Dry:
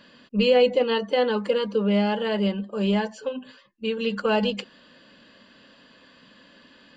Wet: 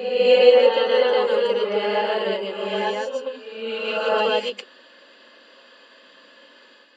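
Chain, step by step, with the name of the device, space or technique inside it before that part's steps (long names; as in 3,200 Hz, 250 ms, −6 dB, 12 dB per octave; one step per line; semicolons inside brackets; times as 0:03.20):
ghost voice (reversed playback; convolution reverb RT60 1.2 s, pre-delay 105 ms, DRR −4 dB; reversed playback; high-pass filter 340 Hz 24 dB per octave)
level −1 dB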